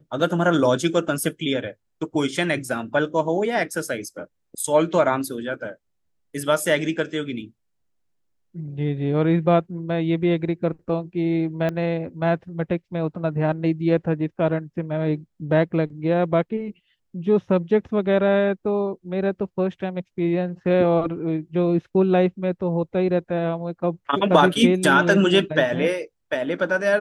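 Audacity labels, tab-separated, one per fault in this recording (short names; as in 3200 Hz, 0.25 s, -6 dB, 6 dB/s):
11.690000	11.690000	pop -15 dBFS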